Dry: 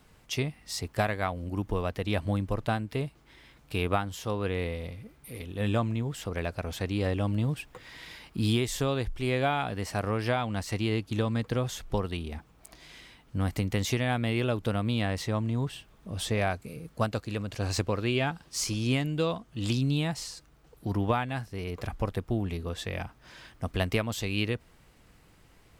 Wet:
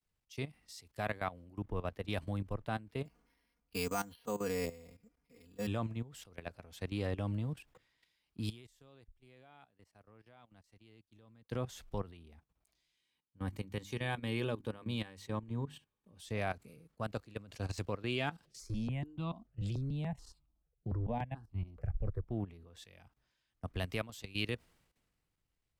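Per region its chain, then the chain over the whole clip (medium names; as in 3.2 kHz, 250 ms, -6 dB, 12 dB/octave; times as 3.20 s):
3.05–5.67 s: distance through air 110 m + comb 4.2 ms, depth 90% + careless resampling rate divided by 6×, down filtered, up hold
8.49–11.49 s: gate -31 dBFS, range -17 dB + compression 2.5:1, threshold -39 dBFS
12.96–16.20 s: peaking EQ 5.2 kHz -4.5 dB 0.2 oct + hum notches 50/100/150/200/250/300/350 Hz + comb of notches 680 Hz
18.45–22.28 s: tilt EQ -2.5 dB/octave + stepped phaser 6.9 Hz 270–1700 Hz
whole clip: level held to a coarse grid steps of 15 dB; three bands expanded up and down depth 70%; trim -6 dB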